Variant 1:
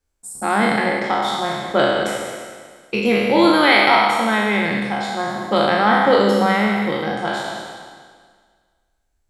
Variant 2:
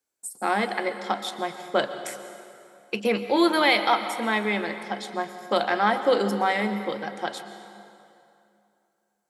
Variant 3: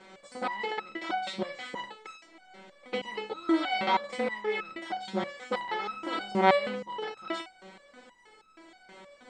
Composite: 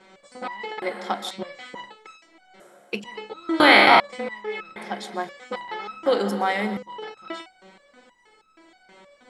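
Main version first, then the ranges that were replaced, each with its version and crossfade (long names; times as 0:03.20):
3
0:00.82–0:01.31: punch in from 2
0:02.60–0:03.04: punch in from 2
0:03.60–0:04.00: punch in from 1
0:04.76–0:05.29: punch in from 2
0:06.06–0:06.77: punch in from 2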